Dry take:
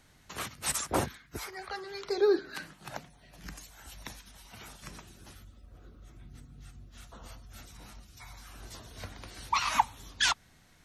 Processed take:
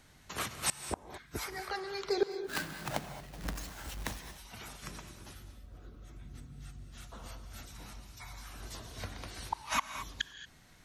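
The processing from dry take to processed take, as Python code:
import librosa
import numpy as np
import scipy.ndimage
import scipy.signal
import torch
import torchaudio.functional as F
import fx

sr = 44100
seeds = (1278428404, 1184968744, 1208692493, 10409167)

y = fx.halfwave_hold(x, sr, at=(2.31, 4.18))
y = fx.gate_flip(y, sr, shuts_db=-19.0, range_db=-37)
y = fx.rev_gated(y, sr, seeds[0], gate_ms=250, shape='rising', drr_db=9.5)
y = y * librosa.db_to_amplitude(1.0)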